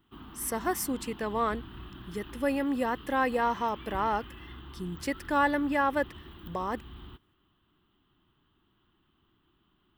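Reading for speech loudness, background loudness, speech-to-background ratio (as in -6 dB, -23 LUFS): -30.5 LUFS, -46.5 LUFS, 16.0 dB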